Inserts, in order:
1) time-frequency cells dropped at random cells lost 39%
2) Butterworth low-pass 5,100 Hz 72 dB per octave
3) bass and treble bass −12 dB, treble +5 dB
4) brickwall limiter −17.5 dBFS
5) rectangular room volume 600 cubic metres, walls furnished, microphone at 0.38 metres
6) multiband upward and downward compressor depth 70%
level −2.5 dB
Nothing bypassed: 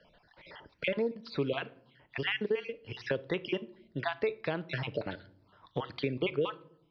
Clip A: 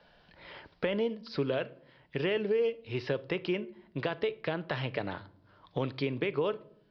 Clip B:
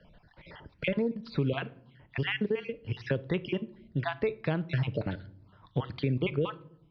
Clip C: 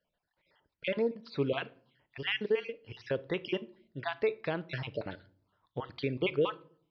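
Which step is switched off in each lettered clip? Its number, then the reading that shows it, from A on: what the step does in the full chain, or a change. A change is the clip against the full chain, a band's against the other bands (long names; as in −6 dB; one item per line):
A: 1, 2 kHz band −3.5 dB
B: 3, 125 Hz band +9.0 dB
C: 6, change in crest factor −2.5 dB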